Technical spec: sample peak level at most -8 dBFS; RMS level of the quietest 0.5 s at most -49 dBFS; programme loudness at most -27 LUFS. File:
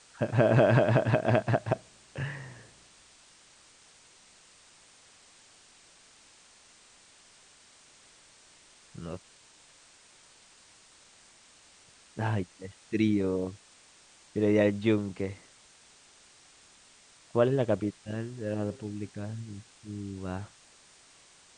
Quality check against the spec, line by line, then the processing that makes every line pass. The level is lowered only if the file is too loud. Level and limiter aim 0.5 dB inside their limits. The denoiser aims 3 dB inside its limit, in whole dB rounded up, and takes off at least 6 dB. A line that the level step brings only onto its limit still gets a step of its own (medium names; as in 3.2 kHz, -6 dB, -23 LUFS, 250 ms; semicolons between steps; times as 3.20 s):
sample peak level -7.5 dBFS: fail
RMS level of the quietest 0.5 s -58 dBFS: pass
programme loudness -29.5 LUFS: pass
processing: peak limiter -8.5 dBFS